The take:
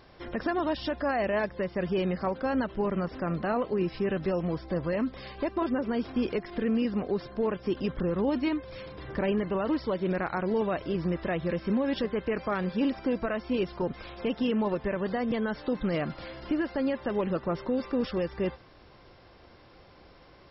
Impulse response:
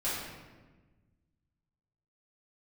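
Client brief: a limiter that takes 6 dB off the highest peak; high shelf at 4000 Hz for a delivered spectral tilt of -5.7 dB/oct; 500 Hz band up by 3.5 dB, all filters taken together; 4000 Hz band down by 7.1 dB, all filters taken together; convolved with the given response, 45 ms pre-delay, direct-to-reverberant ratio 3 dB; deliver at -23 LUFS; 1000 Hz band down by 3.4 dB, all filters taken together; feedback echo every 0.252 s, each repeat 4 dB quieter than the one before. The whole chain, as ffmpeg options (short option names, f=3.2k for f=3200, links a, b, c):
-filter_complex "[0:a]equalizer=f=500:t=o:g=6,equalizer=f=1k:t=o:g=-7,highshelf=f=4k:g=-5,equalizer=f=4k:t=o:g=-7,alimiter=limit=-21dB:level=0:latency=1,aecho=1:1:252|504|756|1008|1260|1512|1764|2016|2268:0.631|0.398|0.25|0.158|0.0994|0.0626|0.0394|0.0249|0.0157,asplit=2[a][b];[1:a]atrim=start_sample=2205,adelay=45[c];[b][c]afir=irnorm=-1:irlink=0,volume=-10dB[d];[a][d]amix=inputs=2:normalize=0,volume=3dB"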